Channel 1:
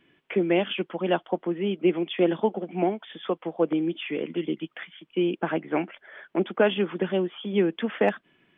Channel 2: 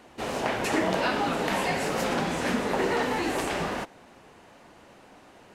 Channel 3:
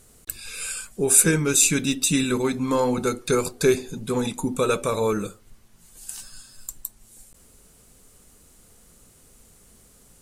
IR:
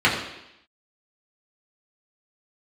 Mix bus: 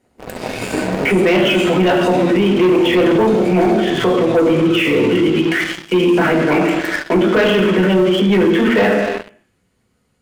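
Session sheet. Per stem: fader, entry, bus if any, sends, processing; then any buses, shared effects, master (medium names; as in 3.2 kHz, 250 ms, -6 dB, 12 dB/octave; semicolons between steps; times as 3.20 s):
-1.5 dB, 0.75 s, send -5.5 dB, band-stop 800 Hz, Q 12
-3.0 dB, 0.00 s, send -22.5 dB, median filter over 41 samples; vibrato 2 Hz 22 cents
-13.5 dB, 0.00 s, send -7 dB, compression, threshold -27 dBFS, peak gain reduction 15.5 dB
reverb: on, RT60 0.85 s, pre-delay 3 ms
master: waveshaping leveller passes 3; peak limiter -8 dBFS, peak gain reduction 12.5 dB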